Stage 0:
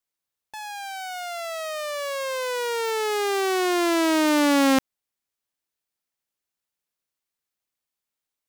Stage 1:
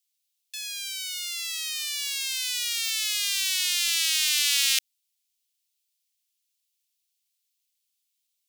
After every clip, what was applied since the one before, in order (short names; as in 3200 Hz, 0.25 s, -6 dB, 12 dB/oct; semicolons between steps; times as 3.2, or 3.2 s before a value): inverse Chebyshev high-pass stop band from 620 Hz, stop band 70 dB; gain +8.5 dB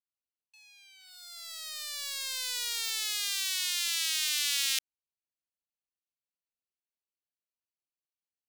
Wiener smoothing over 25 samples; in parallel at -1 dB: limiter -16.5 dBFS, peak gain reduction 11 dB; on the sum: gain -8.5 dB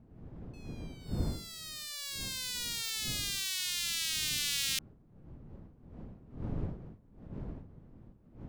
wind noise 190 Hz -40 dBFS; de-hum 99.67 Hz, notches 15; gain -3.5 dB